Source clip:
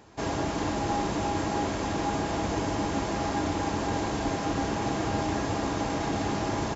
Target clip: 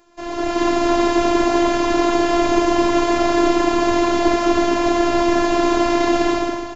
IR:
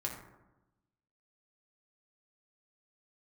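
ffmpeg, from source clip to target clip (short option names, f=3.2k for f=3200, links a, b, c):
-filter_complex "[0:a]acrossover=split=5000[a][b];[b]acompressor=threshold=-53dB:ratio=4:attack=1:release=60[c];[a][c]amix=inputs=2:normalize=0,aeval=exprs='0.168*(cos(1*acos(clip(val(0)/0.168,-1,1)))-cos(1*PI/2))+0.00188*(cos(7*acos(clip(val(0)/0.168,-1,1)))-cos(7*PI/2))':c=same,dynaudnorm=f=100:g=9:m=14dB,bandreject=f=50:t=h:w=6,bandreject=f=100:t=h:w=6,bandreject=f=150:t=h:w=6,bandreject=f=200:t=h:w=6,afftfilt=real='hypot(re,im)*cos(PI*b)':imag='0':win_size=512:overlap=0.75,volume=3dB"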